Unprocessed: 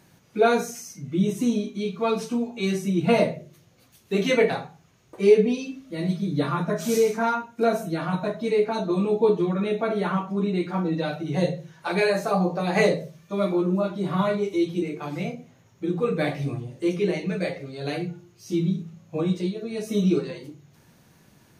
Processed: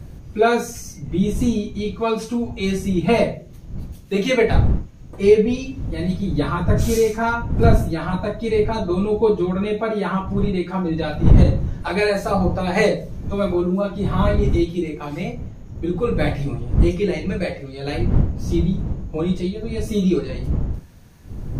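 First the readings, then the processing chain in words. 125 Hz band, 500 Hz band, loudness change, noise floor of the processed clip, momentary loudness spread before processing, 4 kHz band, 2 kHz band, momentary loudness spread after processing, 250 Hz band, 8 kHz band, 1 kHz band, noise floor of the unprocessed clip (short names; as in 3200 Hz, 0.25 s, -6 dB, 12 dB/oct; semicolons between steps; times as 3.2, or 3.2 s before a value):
+9.0 dB, +3.0 dB, +4.0 dB, -39 dBFS, 11 LU, +3.0 dB, +3.0 dB, 11 LU, +3.5 dB, +3.0 dB, +3.0 dB, -58 dBFS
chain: wind noise 110 Hz -24 dBFS; maximiser +4 dB; gain -1 dB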